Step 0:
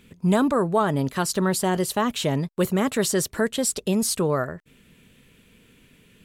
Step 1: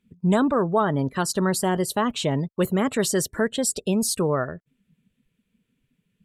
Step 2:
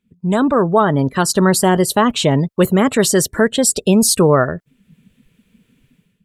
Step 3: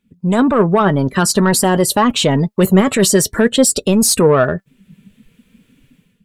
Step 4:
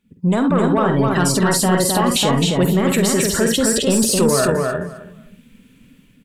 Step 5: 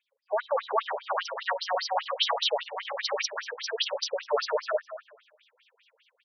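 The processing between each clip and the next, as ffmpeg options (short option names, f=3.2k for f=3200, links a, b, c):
-af "afftdn=nr=22:nf=-39"
-af "dynaudnorm=f=150:g=5:m=16.5dB,volume=-1dB"
-filter_complex "[0:a]asplit=2[a][b];[b]alimiter=limit=-11.5dB:level=0:latency=1:release=20,volume=-0.5dB[c];[a][c]amix=inputs=2:normalize=0,asoftclip=type=tanh:threshold=-2dB,flanger=delay=3.5:depth=1.8:regen=65:speed=0.52:shape=sinusoidal,volume=3dB"
-filter_complex "[0:a]asplit=2[a][b];[b]aecho=0:1:50|68:0.422|0.237[c];[a][c]amix=inputs=2:normalize=0,alimiter=limit=-10dB:level=0:latency=1:release=96,asplit=2[d][e];[e]aecho=0:1:262|524|786:0.708|0.12|0.0205[f];[d][f]amix=inputs=2:normalize=0"
-af "asoftclip=type=tanh:threshold=-11dB,afftfilt=real='re*between(b*sr/1024,590*pow(4500/590,0.5+0.5*sin(2*PI*5*pts/sr))/1.41,590*pow(4500/590,0.5+0.5*sin(2*PI*5*pts/sr))*1.41)':imag='im*between(b*sr/1024,590*pow(4500/590,0.5+0.5*sin(2*PI*5*pts/sr))/1.41,590*pow(4500/590,0.5+0.5*sin(2*PI*5*pts/sr))*1.41)':win_size=1024:overlap=0.75"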